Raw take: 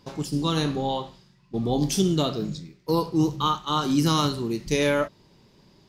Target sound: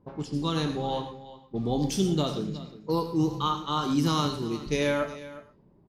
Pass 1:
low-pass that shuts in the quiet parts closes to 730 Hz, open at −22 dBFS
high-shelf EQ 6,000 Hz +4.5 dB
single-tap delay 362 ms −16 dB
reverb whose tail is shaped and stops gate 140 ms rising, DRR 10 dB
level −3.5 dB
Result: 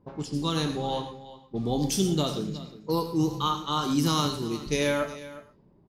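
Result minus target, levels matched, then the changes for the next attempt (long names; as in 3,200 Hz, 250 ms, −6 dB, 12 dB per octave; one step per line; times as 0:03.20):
8,000 Hz band +4.5 dB
change: high-shelf EQ 6,000 Hz −5 dB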